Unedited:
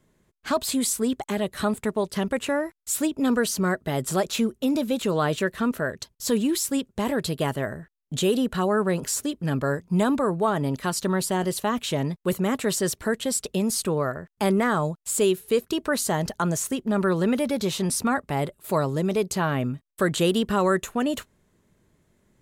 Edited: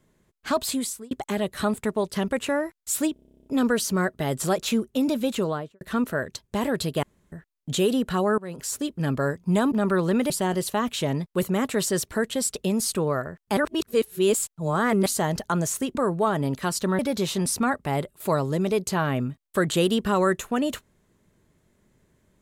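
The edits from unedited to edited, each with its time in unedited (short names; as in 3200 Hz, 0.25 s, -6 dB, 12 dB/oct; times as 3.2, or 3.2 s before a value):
0.66–1.11 fade out
3.13 stutter 0.03 s, 12 plays
5–5.48 studio fade out
6.15–6.92 cut
7.47–7.76 room tone
8.82–9.31 fade in, from -21 dB
10.16–11.2 swap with 16.85–17.43
14.47–15.96 reverse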